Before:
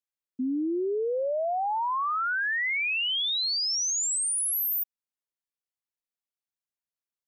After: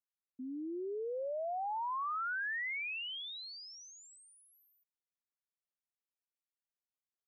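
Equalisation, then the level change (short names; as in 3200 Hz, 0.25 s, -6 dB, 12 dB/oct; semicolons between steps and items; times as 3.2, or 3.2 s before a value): LPF 2300 Hz 12 dB/oct; bell 220 Hz -4 dB 0.77 oct; low shelf 420 Hz -5 dB; -8.0 dB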